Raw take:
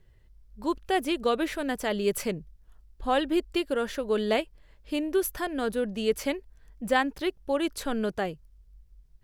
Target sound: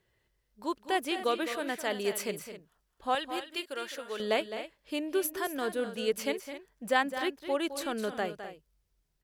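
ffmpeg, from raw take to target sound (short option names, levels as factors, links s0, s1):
-af "asetnsamples=n=441:p=0,asendcmd='3.15 highpass f 1500;4.2 highpass f 370',highpass=f=470:p=1,aecho=1:1:210|256:0.282|0.211,volume=0.841"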